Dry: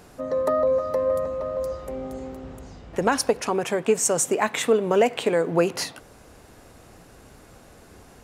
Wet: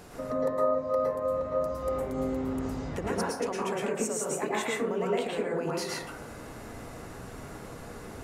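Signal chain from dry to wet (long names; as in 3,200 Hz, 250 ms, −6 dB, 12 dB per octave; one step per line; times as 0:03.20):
downward compressor 6 to 1, threshold −34 dBFS, peak gain reduction 18.5 dB
dense smooth reverb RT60 0.73 s, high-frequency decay 0.3×, pre-delay 100 ms, DRR −5.5 dB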